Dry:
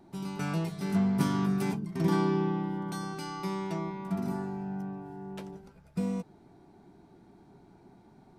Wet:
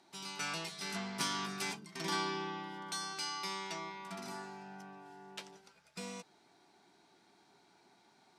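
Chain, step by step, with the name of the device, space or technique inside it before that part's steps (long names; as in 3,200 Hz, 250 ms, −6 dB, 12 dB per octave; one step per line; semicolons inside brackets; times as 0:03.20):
piezo pickup straight into a mixer (low-pass filter 5,100 Hz 12 dB per octave; first difference)
level +13.5 dB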